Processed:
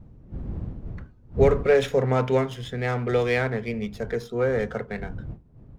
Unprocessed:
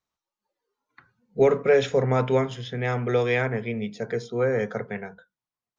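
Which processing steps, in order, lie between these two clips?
wind noise 120 Hz -35 dBFS; running maximum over 3 samples

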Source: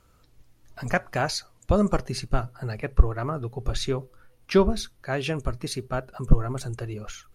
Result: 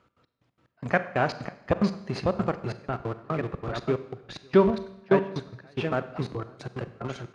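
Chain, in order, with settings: on a send: echo 0.549 s -3 dB; on the sum: step gate "x.x..x.x..xxx.x" 182 bpm -24 dB; in parallel at -7 dB: Schmitt trigger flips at -28 dBFS; on the sum: BPF 140–3100 Hz; Schroeder reverb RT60 0.84 s, combs from 32 ms, DRR 12.5 dB

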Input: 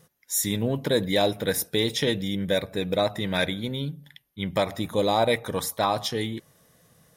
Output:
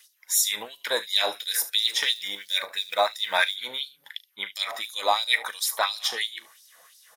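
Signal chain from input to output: in parallel at 0 dB: compressor, threshold -34 dBFS, peak gain reduction 15.5 dB; on the sum: early reflections 38 ms -13.5 dB, 73 ms -16 dB; 1.83–3.56 short-mantissa float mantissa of 4-bit; LFO high-pass sine 2.9 Hz 840–4900 Hz

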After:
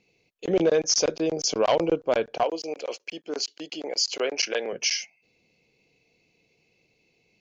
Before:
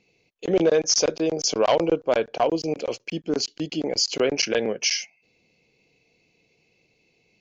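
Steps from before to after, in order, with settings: 2.43–4.73 HPF 470 Hz 12 dB/oct; gain -2 dB

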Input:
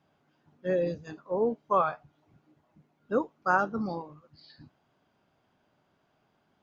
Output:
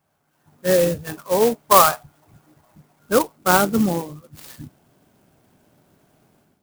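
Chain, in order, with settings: bell 290 Hz -7.5 dB 1.9 oct, from 3.36 s 1100 Hz; AGC gain up to 13 dB; clock jitter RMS 0.07 ms; gain +2.5 dB

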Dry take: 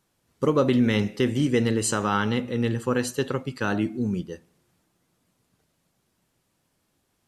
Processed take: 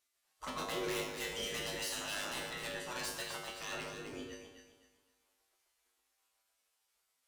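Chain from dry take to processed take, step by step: spectral gate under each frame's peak -15 dB weak; dynamic EQ 4900 Hz, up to +5 dB, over -52 dBFS, Q 0.75; wavefolder -29 dBFS; resonator 52 Hz, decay 0.56 s, harmonics odd, mix 90%; echo with dull and thin repeats by turns 0.128 s, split 1200 Hz, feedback 55%, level -2 dB; gain +7 dB

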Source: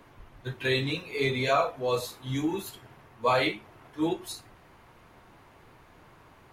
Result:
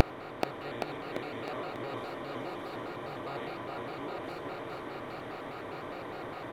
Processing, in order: per-bin compression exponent 0.2; bell 9900 Hz -12 dB 2.3 oct; in parallel at +0.5 dB: limiter -17 dBFS, peak gain reduction 9 dB; on the sum: flipped gate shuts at -15 dBFS, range -32 dB; on a send: bouncing-ball echo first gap 0.43 s, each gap 0.9×, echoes 5; on the sum: shaped vibrato square 4.9 Hz, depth 160 cents; gain +7.5 dB

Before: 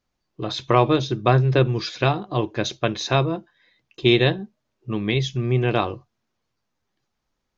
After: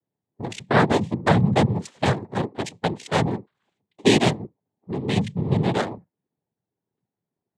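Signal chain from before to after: Wiener smoothing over 41 samples; noise vocoder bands 6

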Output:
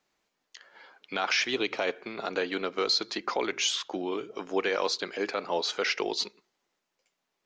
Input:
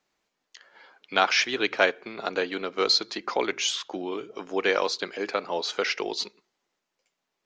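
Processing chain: 1.52–1.94 bell 1600 Hz -14 dB -> -4 dB 0.37 oct; limiter -16.5 dBFS, peak gain reduction 11.5 dB

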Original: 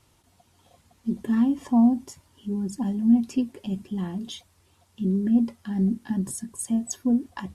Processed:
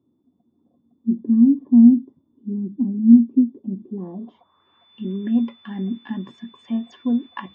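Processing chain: whine 3500 Hz -45 dBFS; speaker cabinet 220–5300 Hz, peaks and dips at 240 Hz +5 dB, 1100 Hz +8 dB, 3800 Hz -6 dB; low-pass sweep 280 Hz -> 2500 Hz, 3.74–4.95; gain -1 dB

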